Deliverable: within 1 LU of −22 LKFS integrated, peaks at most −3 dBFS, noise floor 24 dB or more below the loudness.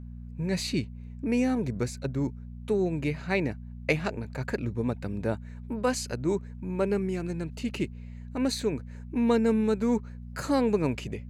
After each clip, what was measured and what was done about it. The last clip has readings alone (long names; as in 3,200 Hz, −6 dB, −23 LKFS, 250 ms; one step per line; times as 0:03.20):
mains hum 60 Hz; hum harmonics up to 240 Hz; level of the hum −38 dBFS; integrated loudness −29.5 LKFS; sample peak −10.0 dBFS; target loudness −22.0 LKFS
→ hum removal 60 Hz, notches 4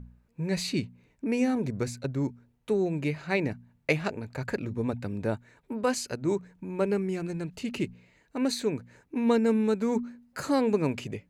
mains hum none found; integrated loudness −30.0 LKFS; sample peak −10.0 dBFS; target loudness −22.0 LKFS
→ level +8 dB
brickwall limiter −3 dBFS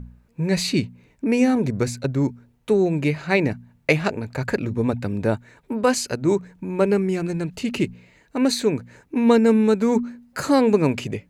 integrated loudness −22.0 LKFS; sample peak −3.0 dBFS; background noise floor −60 dBFS